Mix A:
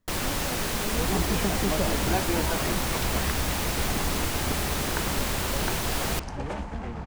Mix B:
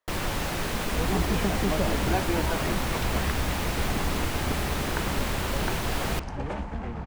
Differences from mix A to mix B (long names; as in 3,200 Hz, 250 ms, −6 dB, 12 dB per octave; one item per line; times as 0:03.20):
speech: add high-pass filter 510 Hz 24 dB per octave
master: add bass and treble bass +1 dB, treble −6 dB